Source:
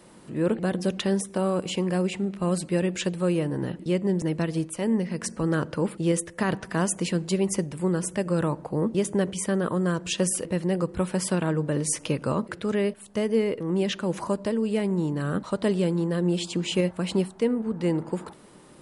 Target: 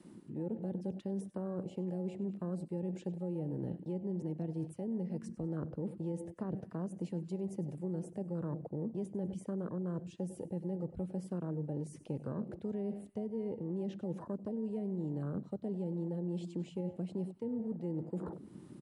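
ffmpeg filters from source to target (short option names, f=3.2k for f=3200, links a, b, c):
-filter_complex "[0:a]aecho=1:1:98|196|294|392:0.119|0.0606|0.0309|0.0158,areverse,acompressor=threshold=-37dB:ratio=5,areverse,afwtdn=0.00891,acrossover=split=290|690[a][b][c];[a]acompressor=threshold=-40dB:ratio=4[d];[b]acompressor=threshold=-47dB:ratio=4[e];[c]acompressor=threshold=-60dB:ratio=4[f];[d][e][f]amix=inputs=3:normalize=0,volume=3.5dB"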